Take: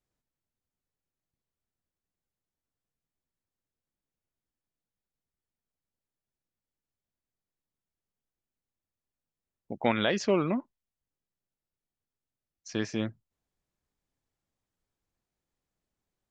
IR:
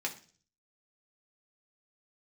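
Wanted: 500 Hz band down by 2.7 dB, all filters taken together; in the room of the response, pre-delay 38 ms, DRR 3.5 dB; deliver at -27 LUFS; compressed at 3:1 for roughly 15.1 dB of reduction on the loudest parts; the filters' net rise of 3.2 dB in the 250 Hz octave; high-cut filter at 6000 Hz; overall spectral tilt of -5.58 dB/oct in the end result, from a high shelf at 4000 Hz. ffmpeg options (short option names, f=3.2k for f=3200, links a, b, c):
-filter_complex "[0:a]lowpass=6k,equalizer=f=250:t=o:g=5.5,equalizer=f=500:t=o:g=-5.5,highshelf=f=4k:g=-4,acompressor=threshold=-42dB:ratio=3,asplit=2[a][b];[1:a]atrim=start_sample=2205,adelay=38[c];[b][c]afir=irnorm=-1:irlink=0,volume=-7dB[d];[a][d]amix=inputs=2:normalize=0,volume=14.5dB"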